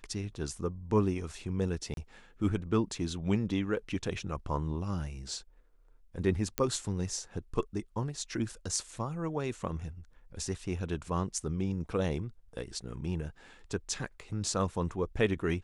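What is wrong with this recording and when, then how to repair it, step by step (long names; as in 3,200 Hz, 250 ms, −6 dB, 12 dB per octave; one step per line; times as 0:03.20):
0:01.94–0:01.97: drop-out 32 ms
0:06.58: click −11 dBFS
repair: click removal
repair the gap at 0:01.94, 32 ms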